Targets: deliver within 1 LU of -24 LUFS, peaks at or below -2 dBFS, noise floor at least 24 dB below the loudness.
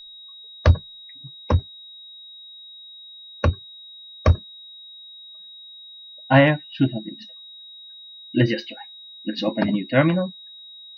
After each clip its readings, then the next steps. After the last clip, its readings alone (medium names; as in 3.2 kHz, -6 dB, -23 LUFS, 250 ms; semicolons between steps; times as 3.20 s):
steady tone 3.8 kHz; tone level -40 dBFS; loudness -22.0 LUFS; peak level -4.5 dBFS; loudness target -24.0 LUFS
-> band-stop 3.8 kHz, Q 30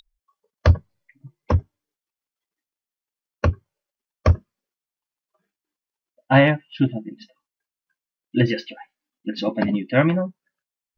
steady tone not found; loudness -22.0 LUFS; peak level -4.5 dBFS; loudness target -24.0 LUFS
-> trim -2 dB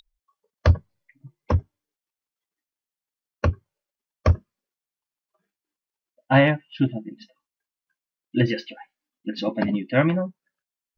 loudness -24.0 LUFS; peak level -6.5 dBFS; noise floor -92 dBFS